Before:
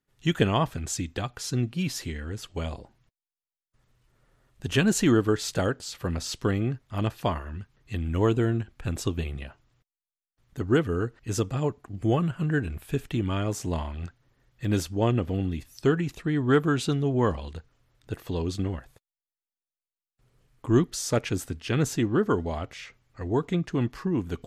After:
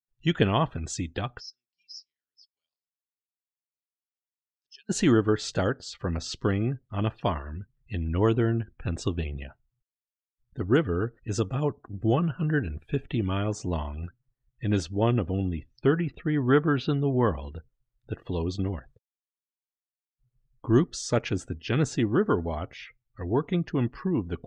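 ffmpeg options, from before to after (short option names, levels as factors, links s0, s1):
-filter_complex "[0:a]asplit=3[s0][s1][s2];[s0]afade=t=out:st=1.39:d=0.02[s3];[s1]bandpass=f=5200:t=q:w=9.6,afade=t=in:st=1.39:d=0.02,afade=t=out:st=4.89:d=0.02[s4];[s2]afade=t=in:st=4.89:d=0.02[s5];[s3][s4][s5]amix=inputs=3:normalize=0,asettb=1/sr,asplit=3[s6][s7][s8];[s6]atrim=end=15.494[s9];[s7]atrim=start=15.49:end=17.56,asetpts=PTS-STARTPTS,afade=t=in:d=0.004:c=qsin,afade=t=out:st=2.066:d=0.004:c=qsin,lowpass=3900[s10];[s8]atrim=start=17.556[s11];[s9][s10]acrossfade=d=0.004:c1=hsin:c2=qsin[s12];[s12][s11]acrossfade=d=0.004:c1=qsin:c2=hsin,lowpass=6600,afftdn=nr=26:nf=-48"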